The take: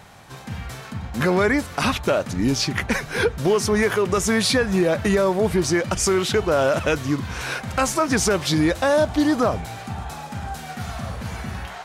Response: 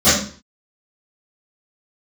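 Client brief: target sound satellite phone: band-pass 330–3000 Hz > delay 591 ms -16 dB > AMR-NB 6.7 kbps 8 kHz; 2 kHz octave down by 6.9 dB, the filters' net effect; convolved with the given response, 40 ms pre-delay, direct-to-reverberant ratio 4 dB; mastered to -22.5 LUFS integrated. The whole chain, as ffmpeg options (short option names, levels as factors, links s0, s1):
-filter_complex "[0:a]equalizer=f=2000:t=o:g=-8.5,asplit=2[s0][s1];[1:a]atrim=start_sample=2205,adelay=40[s2];[s1][s2]afir=irnorm=-1:irlink=0,volume=0.0355[s3];[s0][s3]amix=inputs=2:normalize=0,highpass=330,lowpass=3000,aecho=1:1:591:0.158,volume=0.944" -ar 8000 -c:a libopencore_amrnb -b:a 6700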